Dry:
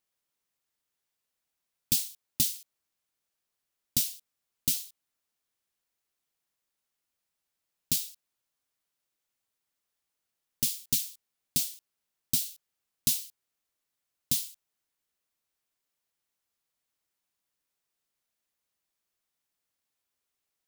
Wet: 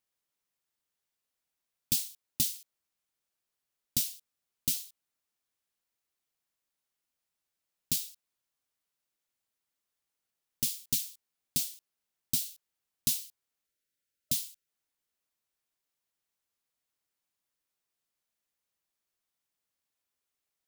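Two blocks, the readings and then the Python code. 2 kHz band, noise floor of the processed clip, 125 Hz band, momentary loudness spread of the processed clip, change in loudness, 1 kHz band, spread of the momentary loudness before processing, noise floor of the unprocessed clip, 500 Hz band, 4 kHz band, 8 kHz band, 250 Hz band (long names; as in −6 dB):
−2.5 dB, below −85 dBFS, −2.5 dB, 13 LU, −2.5 dB, can't be measured, 13 LU, −85 dBFS, −2.5 dB, −2.5 dB, −2.5 dB, −2.5 dB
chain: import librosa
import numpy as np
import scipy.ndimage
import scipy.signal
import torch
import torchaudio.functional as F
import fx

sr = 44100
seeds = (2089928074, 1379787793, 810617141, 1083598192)

y = fx.spec_erase(x, sr, start_s=13.66, length_s=1.02, low_hz=610.0, high_hz=1300.0)
y = y * 10.0 ** (-2.5 / 20.0)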